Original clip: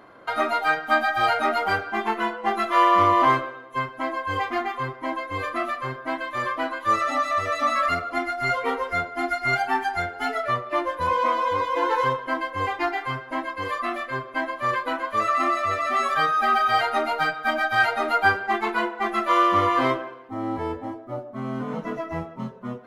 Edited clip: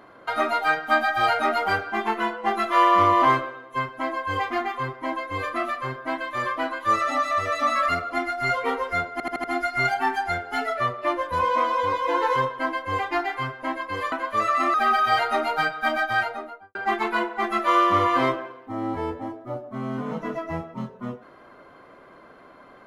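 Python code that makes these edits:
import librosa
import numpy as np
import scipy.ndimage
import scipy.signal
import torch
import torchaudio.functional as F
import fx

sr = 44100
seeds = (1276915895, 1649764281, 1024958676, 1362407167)

y = fx.studio_fade_out(x, sr, start_s=17.56, length_s=0.81)
y = fx.edit(y, sr, fx.stutter(start_s=9.12, slice_s=0.08, count=5),
    fx.cut(start_s=13.8, length_s=1.12),
    fx.cut(start_s=15.54, length_s=0.82), tone=tone)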